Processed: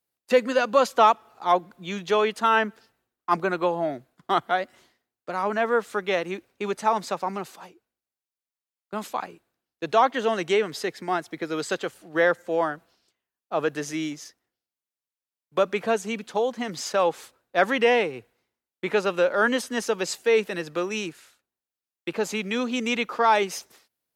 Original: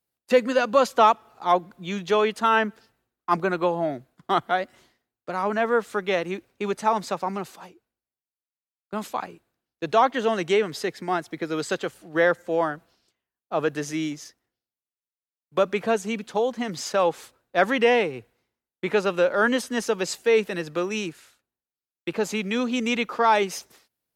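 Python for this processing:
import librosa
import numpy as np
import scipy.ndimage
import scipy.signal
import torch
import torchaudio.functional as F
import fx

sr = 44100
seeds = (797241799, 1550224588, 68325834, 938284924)

y = fx.low_shelf(x, sr, hz=190.0, db=-6.0)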